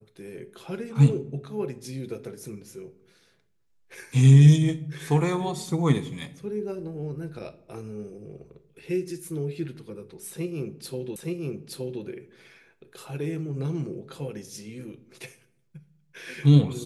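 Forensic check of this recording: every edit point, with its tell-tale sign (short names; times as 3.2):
11.16 repeat of the last 0.87 s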